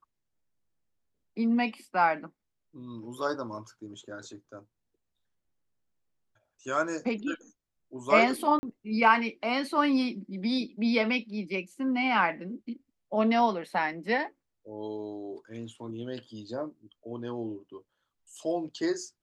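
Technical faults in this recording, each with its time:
8.59–8.63 s: dropout 40 ms

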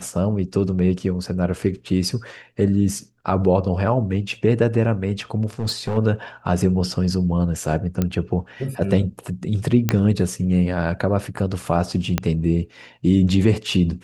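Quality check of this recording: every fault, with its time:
5.59–5.98 s: clipped -18.5 dBFS
8.02 s: pop -8 dBFS
9.89 s: pop -4 dBFS
12.18 s: pop -5 dBFS

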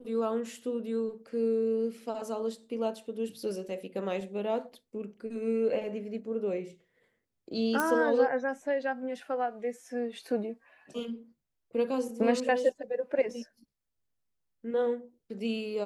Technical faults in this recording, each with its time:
7.80 s: pop -14 dBFS

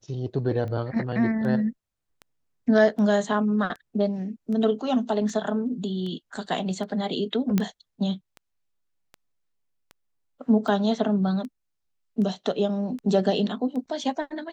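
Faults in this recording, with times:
tick 78 rpm -26 dBFS
7.58 s: pop -10 dBFS

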